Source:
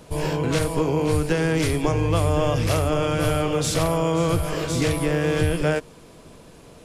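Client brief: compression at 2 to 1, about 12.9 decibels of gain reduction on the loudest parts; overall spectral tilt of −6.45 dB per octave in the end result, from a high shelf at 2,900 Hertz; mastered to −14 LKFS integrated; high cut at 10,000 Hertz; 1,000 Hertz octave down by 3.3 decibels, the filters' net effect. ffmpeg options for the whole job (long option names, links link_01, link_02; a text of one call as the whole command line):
ffmpeg -i in.wav -af "lowpass=10000,equalizer=frequency=1000:width_type=o:gain=-3.5,highshelf=frequency=2900:gain=-6,acompressor=threshold=-42dB:ratio=2,volume=21.5dB" out.wav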